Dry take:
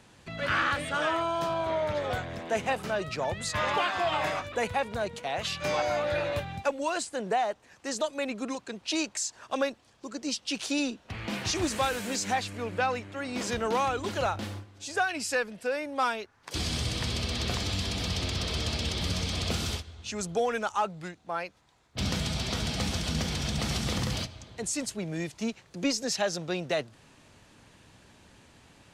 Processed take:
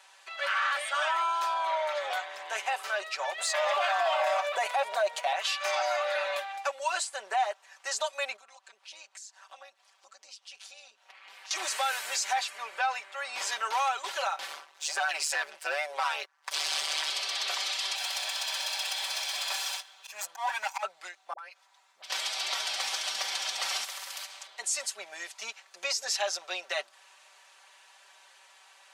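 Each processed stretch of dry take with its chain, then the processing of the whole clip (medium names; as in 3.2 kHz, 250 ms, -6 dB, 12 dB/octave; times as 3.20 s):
3.38–5.33 s: waveshaping leveller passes 1 + peaking EQ 640 Hz +14.5 dB 0.42 oct
8.36–11.51 s: AM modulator 210 Hz, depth 50% + compression 2.5:1, threshold -53 dBFS
14.48–17.10 s: waveshaping leveller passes 2 + AM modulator 150 Hz, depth 80% + loudspeaker Doppler distortion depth 0.11 ms
17.95–20.83 s: comb filter that takes the minimum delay 1.2 ms + high-pass 240 Hz 6 dB/octave + slow attack 118 ms
21.33–22.10 s: compression 10:1, threshold -42 dBFS + phase dispersion highs, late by 56 ms, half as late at 540 Hz
23.84–24.47 s: compression 2.5:1, threshold -35 dBFS + ring modulator 46 Hz + spectrum-flattening compressor 2:1
whole clip: high-pass 720 Hz 24 dB/octave; comb 5.2 ms, depth 77%; peak limiter -20.5 dBFS; trim +1 dB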